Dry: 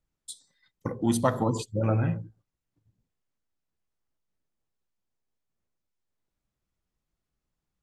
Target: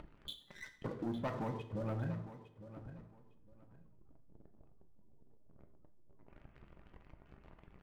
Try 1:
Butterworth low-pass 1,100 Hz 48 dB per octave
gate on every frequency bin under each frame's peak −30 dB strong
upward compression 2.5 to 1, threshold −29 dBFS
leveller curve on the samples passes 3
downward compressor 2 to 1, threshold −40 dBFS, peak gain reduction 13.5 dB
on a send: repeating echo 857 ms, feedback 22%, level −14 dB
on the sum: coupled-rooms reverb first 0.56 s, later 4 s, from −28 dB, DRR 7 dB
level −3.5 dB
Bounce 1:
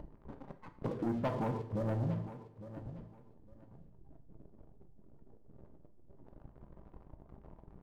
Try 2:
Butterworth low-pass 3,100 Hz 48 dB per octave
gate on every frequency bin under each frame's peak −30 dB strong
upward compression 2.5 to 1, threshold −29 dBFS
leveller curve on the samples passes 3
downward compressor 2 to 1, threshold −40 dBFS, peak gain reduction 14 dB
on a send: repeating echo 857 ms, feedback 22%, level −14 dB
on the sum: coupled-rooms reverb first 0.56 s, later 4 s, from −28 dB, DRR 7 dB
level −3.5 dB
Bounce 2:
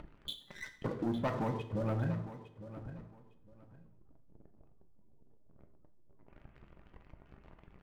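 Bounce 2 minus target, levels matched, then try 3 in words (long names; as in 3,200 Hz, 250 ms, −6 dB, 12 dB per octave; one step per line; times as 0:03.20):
downward compressor: peak gain reduction −5 dB
Butterworth low-pass 3,100 Hz 48 dB per octave
gate on every frequency bin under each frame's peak −30 dB strong
upward compression 2.5 to 1, threshold −29 dBFS
leveller curve on the samples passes 3
downward compressor 2 to 1, threshold −49.5 dBFS, peak gain reduction 19 dB
on a send: repeating echo 857 ms, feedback 22%, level −14 dB
on the sum: coupled-rooms reverb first 0.56 s, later 4 s, from −28 dB, DRR 7 dB
level −3.5 dB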